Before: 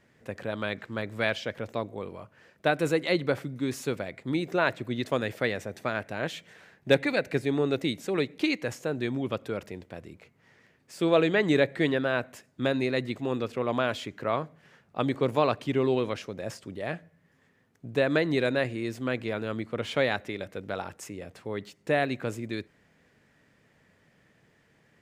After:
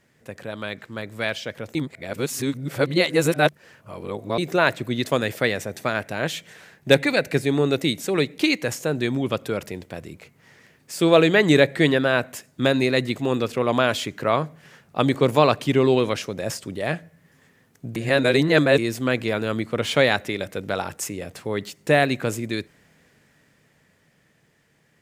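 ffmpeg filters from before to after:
-filter_complex "[0:a]asplit=5[s0][s1][s2][s3][s4];[s0]atrim=end=1.752[s5];[s1]atrim=start=1.748:end=4.382,asetpts=PTS-STARTPTS,areverse[s6];[s2]atrim=start=4.378:end=17.962[s7];[s3]atrim=start=17.958:end=18.782,asetpts=PTS-STARTPTS,areverse[s8];[s4]atrim=start=18.778[s9];[s5][s6]acrossfade=d=0.004:c1=hsin:c2=hsin[s10];[s10][s7]acrossfade=d=0.004:c1=hsin:c2=hsin[s11];[s11][s8]acrossfade=d=0.004:c1=hsin:c2=hsin[s12];[s12][s9]acrossfade=d=0.004:c1=hsin:c2=hsin,aemphasis=mode=production:type=cd,dynaudnorm=f=140:g=31:m=2.99,equalizer=f=150:w=6.8:g=4"

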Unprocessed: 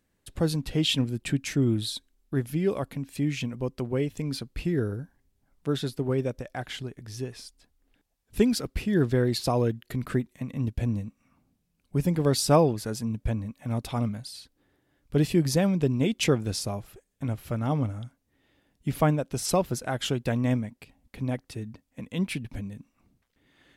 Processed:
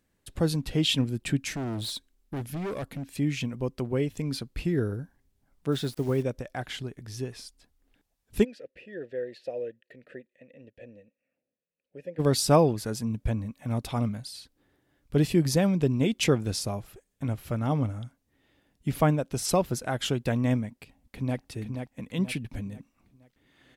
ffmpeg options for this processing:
-filter_complex "[0:a]asettb=1/sr,asplit=3[s0][s1][s2];[s0]atrim=end=1.524[s3];[s1]atrim=start=1.52:end=3.14,asetpts=PTS-STARTPTS,afade=t=in:d=0.004:c=qsin,afade=t=out:st=1.616:d=0.004:c=qsin,volume=31.6,asoftclip=hard,volume=0.0316[s4];[s2]atrim=start=3.136[s5];[s3][s4]acrossfade=d=0.004:c1=hsin:c2=qsin[s6];[s6][s5]acrossfade=d=0.004:c1=qsin:c2=hsin,asettb=1/sr,asplit=3[s7][s8][s9];[s7]atrim=end=5.724[s10];[s8]atrim=start=5.72:end=6.23,asetpts=PTS-STARTPTS,afade=t=in:d=0.004:c=qsin,afade=t=out:st=0.506:d=0.004:c=qsin,acrusher=bits=9:dc=4:mix=0:aa=0.000001[s11];[s9]atrim=start=6.226[s12];[s10][s11]acrossfade=d=0.004:c1=hsin:c2=qsin[s13];[s13][s12]acrossfade=d=0.004:c1=qsin:c2=hsin,asplit=3[s14][s15][s16];[s14]afade=t=out:st=8.43:d=0.02[s17];[s15]asplit=3[s18][s19][s20];[s18]bandpass=f=530:t=q:w=8,volume=1[s21];[s19]bandpass=f=1840:t=q:w=8,volume=0.501[s22];[s20]bandpass=f=2480:t=q:w=8,volume=0.355[s23];[s21][s22][s23]amix=inputs=3:normalize=0,afade=t=in:st=8.43:d=0.02,afade=t=out:st=12.18:d=0.02[s24];[s16]afade=t=in:st=12.18:d=0.02[s25];[s17][s24][s25]amix=inputs=3:normalize=0,asplit=2[s26][s27];[s27]afade=t=in:st=20.68:d=0.01,afade=t=out:st=21.39:d=0.01,aecho=0:1:480|960|1440|1920|2400:0.501187|0.200475|0.08019|0.032076|0.0128304[s28];[s26][s28]amix=inputs=2:normalize=0"

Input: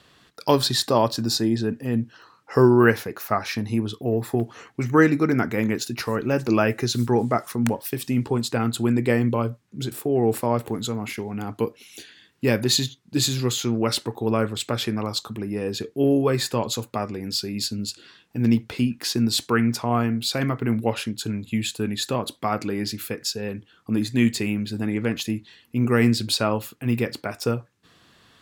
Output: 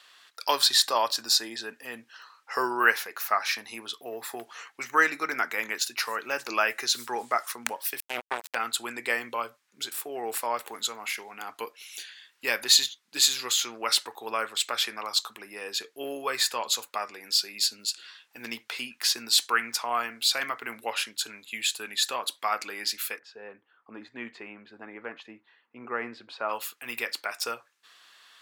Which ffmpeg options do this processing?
-filter_complex "[0:a]asettb=1/sr,asplit=3[s0][s1][s2];[s0]atrim=end=8.004[s3];[s1]atrim=start=8:end=8.55,asetpts=PTS-STARTPTS,afade=t=in:d=0.004:c=qsin,afade=t=out:st=0.546:d=0.004:c=qsin,acrusher=bits=2:mix=0:aa=0.5[s4];[s2]atrim=start=8.546[s5];[s3][s4]acrossfade=d=0.004:c1=hsin:c2=qsin[s6];[s6][s5]acrossfade=d=0.004:c1=qsin:c2=hsin,asplit=3[s7][s8][s9];[s7]afade=t=out:st=23.18:d=0.02[s10];[s8]lowpass=1100,afade=t=in:st=23.18:d=0.02,afade=t=out:st=26.48:d=0.02[s11];[s9]afade=t=in:st=26.48:d=0.02[s12];[s10][s11][s12]amix=inputs=3:normalize=0,highpass=1100,volume=1.33"

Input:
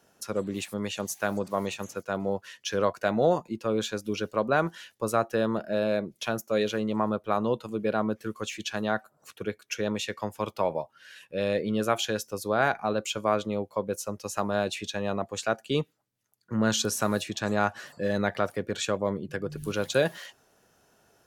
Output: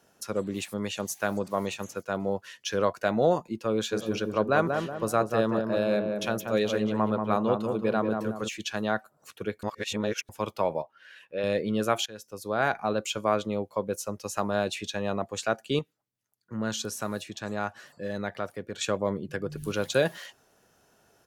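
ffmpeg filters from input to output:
-filter_complex "[0:a]asplit=3[s0][s1][s2];[s0]afade=t=out:st=3.91:d=0.02[s3];[s1]asplit=2[s4][s5];[s5]adelay=185,lowpass=f=1300:p=1,volume=0.631,asplit=2[s6][s7];[s7]adelay=185,lowpass=f=1300:p=1,volume=0.46,asplit=2[s8][s9];[s9]adelay=185,lowpass=f=1300:p=1,volume=0.46,asplit=2[s10][s11];[s11]adelay=185,lowpass=f=1300:p=1,volume=0.46,asplit=2[s12][s13];[s13]adelay=185,lowpass=f=1300:p=1,volume=0.46,asplit=2[s14][s15];[s15]adelay=185,lowpass=f=1300:p=1,volume=0.46[s16];[s4][s6][s8][s10][s12][s14][s16]amix=inputs=7:normalize=0,afade=t=in:st=3.91:d=0.02,afade=t=out:st=8.47:d=0.02[s17];[s2]afade=t=in:st=8.47:d=0.02[s18];[s3][s17][s18]amix=inputs=3:normalize=0,asettb=1/sr,asplit=3[s19][s20][s21];[s19]atrim=end=10.824[s22];[s20]atrim=start=10.82:end=11.44,asetpts=PTS-STARTPTS,afade=t=in:d=0.004:c=qsin,afade=t=out:st=0.616:d=0.004:c=qsin,bass=f=250:g=-10,treble=f=4000:g=-12[s23];[s21]atrim=start=11.436[s24];[s22][s23]acrossfade=d=0.004:c1=hsin:c2=qsin[s25];[s25][s24]acrossfade=d=0.004:c1=qsin:c2=hsin,asplit=6[s26][s27][s28][s29][s30][s31];[s26]atrim=end=9.632[s32];[s27]atrim=start=9.628:end=10.292,asetpts=PTS-STARTPTS,areverse[s33];[s28]atrim=start=10.288:end=12.06,asetpts=PTS-STARTPTS,afade=t=out:st=1.768:d=0.004:c=hsin:silence=0.105925[s34];[s29]atrim=start=12.06:end=15.792,asetpts=PTS-STARTPTS,afade=t=in:d=0.7:silence=0.105925[s35];[s30]atrim=start=15.788:end=18.812,asetpts=PTS-STARTPTS,volume=0.501[s36];[s31]atrim=start=18.808[s37];[s32][s33]acrossfade=d=0.004:c1=hsin:c2=hsin[s38];[s34][s35]concat=n=2:v=0:a=1[s39];[s38][s39]acrossfade=d=0.004:c1=hsin:c2=hsin[s40];[s40][s36]acrossfade=d=0.004:c1=hsin:c2=hsin[s41];[s41][s37]acrossfade=d=0.004:c1=hsin:c2=hsin"

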